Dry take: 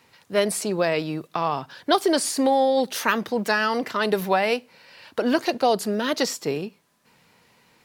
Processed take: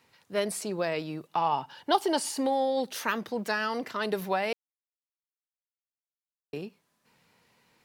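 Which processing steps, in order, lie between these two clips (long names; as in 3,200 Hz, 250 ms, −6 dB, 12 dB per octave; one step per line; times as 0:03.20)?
0:01.27–0:02.39: hollow resonant body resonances 870/2,900 Hz, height 15 dB, ringing for 40 ms
0:04.53–0:06.53: silence
level −7.5 dB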